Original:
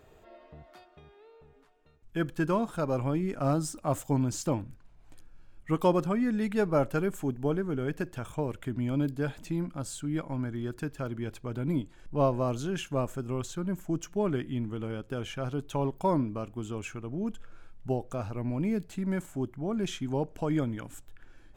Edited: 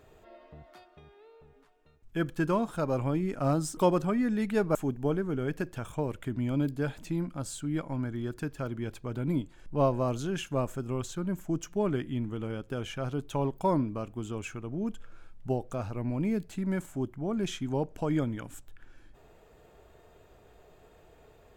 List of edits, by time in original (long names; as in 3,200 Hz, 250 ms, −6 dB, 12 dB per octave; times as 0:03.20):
0:03.77–0:05.79: remove
0:06.77–0:07.15: remove